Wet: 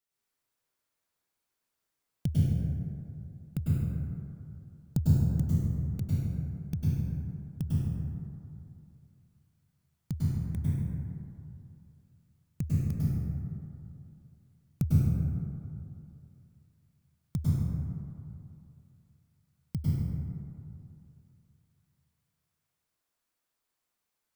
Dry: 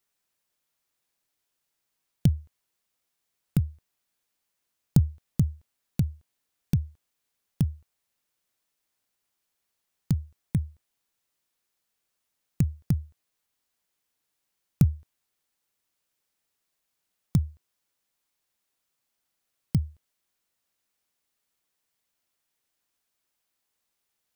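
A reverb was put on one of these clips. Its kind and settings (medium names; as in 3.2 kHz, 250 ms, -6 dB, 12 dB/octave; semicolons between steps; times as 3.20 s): plate-style reverb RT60 2.6 s, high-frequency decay 0.35×, pre-delay 90 ms, DRR -8 dB; trim -10 dB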